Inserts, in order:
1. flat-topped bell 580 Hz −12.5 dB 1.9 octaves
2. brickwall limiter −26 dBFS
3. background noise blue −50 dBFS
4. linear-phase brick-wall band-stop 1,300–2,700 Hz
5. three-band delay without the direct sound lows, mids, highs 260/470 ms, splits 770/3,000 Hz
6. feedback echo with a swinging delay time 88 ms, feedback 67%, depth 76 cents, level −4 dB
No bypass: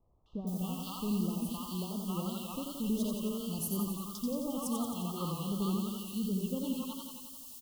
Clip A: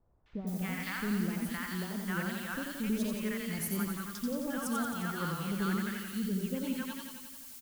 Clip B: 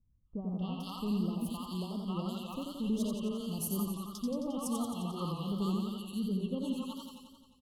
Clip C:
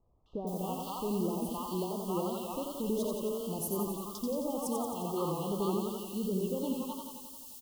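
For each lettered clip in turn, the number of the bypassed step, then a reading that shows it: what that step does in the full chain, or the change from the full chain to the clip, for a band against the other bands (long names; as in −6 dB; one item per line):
4, 2 kHz band +19.5 dB
3, 8 kHz band −3.0 dB
1, 500 Hz band +9.5 dB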